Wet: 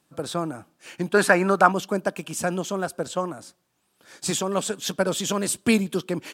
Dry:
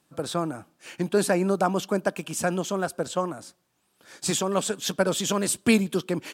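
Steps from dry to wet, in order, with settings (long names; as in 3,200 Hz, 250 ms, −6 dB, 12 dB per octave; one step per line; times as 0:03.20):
0:01.14–0:01.72: parametric band 1,500 Hz +13 dB 1.8 octaves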